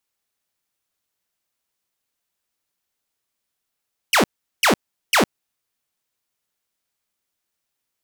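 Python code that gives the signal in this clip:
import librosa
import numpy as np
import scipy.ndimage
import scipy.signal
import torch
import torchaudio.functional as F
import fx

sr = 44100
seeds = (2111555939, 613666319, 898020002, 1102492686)

y = fx.laser_zaps(sr, level_db=-10.0, start_hz=3200.0, end_hz=160.0, length_s=0.11, wave='saw', shots=3, gap_s=0.39)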